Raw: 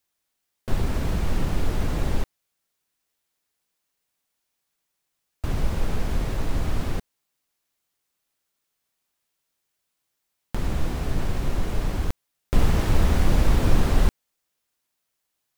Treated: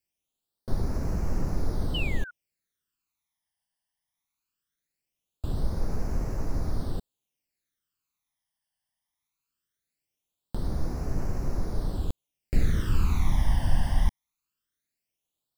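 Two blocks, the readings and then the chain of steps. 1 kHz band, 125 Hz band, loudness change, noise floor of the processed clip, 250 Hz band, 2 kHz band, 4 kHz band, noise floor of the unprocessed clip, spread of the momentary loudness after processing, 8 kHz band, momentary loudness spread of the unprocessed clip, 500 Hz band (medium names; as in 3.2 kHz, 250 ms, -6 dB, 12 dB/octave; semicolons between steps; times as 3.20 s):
-7.0 dB, -4.0 dB, -4.5 dB, under -85 dBFS, -5.5 dB, -6.0 dB, -4.0 dB, -79 dBFS, 9 LU, -7.5 dB, 11 LU, -7.0 dB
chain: painted sound fall, 1.94–2.31 s, 1.4–3.1 kHz -18 dBFS; phase shifter stages 12, 0.2 Hz, lowest notch 410–3300 Hz; trim -5 dB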